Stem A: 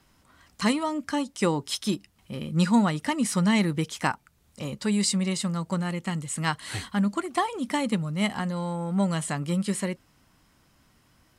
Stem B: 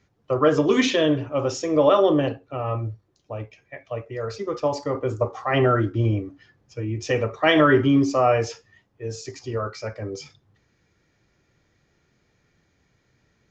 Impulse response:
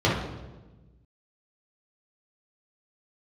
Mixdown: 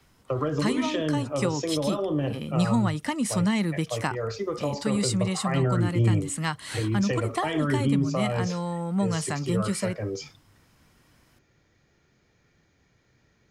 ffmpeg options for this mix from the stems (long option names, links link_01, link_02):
-filter_complex "[0:a]volume=0dB[link_01];[1:a]acrossover=split=230[link_02][link_03];[link_03]acompressor=threshold=-26dB:ratio=6[link_04];[link_02][link_04]amix=inputs=2:normalize=0,volume=0.5dB[link_05];[link_01][link_05]amix=inputs=2:normalize=0,acrossover=split=170[link_06][link_07];[link_07]acompressor=threshold=-24dB:ratio=3[link_08];[link_06][link_08]amix=inputs=2:normalize=0"